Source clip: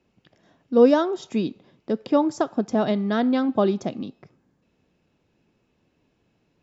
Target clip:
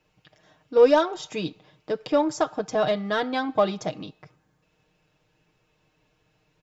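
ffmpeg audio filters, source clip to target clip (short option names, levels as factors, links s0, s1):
-filter_complex "[0:a]equalizer=f=250:w=0.9:g=-11.5,aecho=1:1:6.5:0.7,asplit=2[s0][s1];[s1]asoftclip=type=tanh:threshold=0.0596,volume=0.398[s2];[s0][s2]amix=inputs=2:normalize=0"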